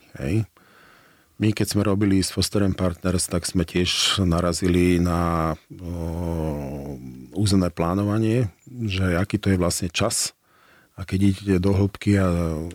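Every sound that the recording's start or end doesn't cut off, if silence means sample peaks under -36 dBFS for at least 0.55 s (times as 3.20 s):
1.40–10.29 s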